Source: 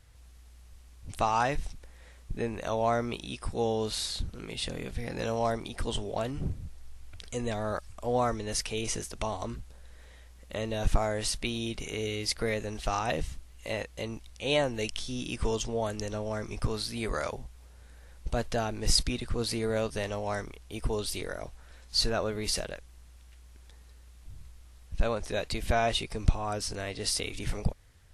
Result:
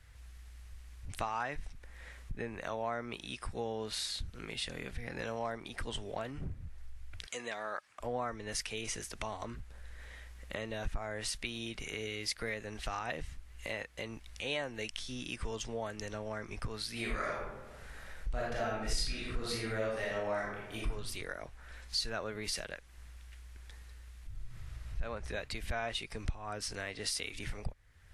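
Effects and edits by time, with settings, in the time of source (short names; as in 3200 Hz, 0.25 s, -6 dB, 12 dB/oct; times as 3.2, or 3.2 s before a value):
7.26–8 weighting filter A
16.92–20.89 reverb throw, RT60 0.81 s, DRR -5.5 dB
24.32–24.97 reverb throw, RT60 2.9 s, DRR -9.5 dB
whole clip: bell 1800 Hz +8.5 dB 1.3 oct; compressor 3:1, threshold -46 dBFS; three-band expander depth 40%; gain +5 dB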